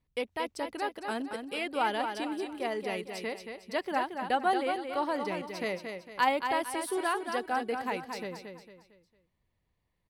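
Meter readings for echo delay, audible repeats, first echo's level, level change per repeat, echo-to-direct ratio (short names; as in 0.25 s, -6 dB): 0.227 s, 4, -6.5 dB, -8.5 dB, -6.0 dB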